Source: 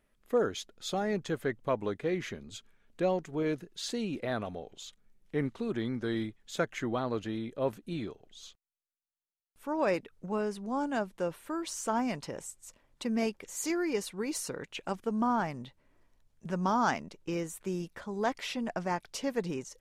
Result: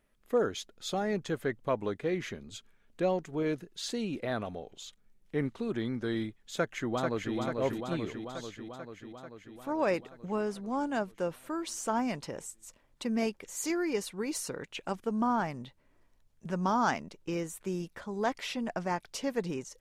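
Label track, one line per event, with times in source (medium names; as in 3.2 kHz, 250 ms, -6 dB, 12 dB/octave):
6.530000	7.360000	echo throw 440 ms, feedback 70%, level -4 dB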